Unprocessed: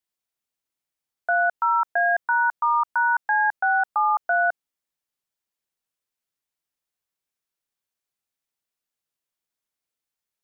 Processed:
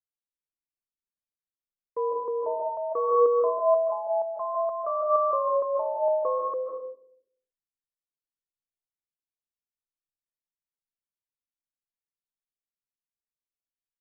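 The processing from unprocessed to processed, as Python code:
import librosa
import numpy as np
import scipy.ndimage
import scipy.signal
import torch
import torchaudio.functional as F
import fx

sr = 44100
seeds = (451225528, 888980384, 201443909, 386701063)

y = fx.speed_glide(x, sr, from_pct=64, to_pct=85)
y = fx.peak_eq(y, sr, hz=820.0, db=-11.5, octaves=0.91)
y = fx.env_lowpass(y, sr, base_hz=720.0, full_db=-22.5)
y = fx.air_absorb(y, sr, metres=340.0)
y = fx.rev_freeverb(y, sr, rt60_s=0.76, hf_ratio=0.25, predelay_ms=110, drr_db=0.0)
y = fx.band_widen(y, sr, depth_pct=40)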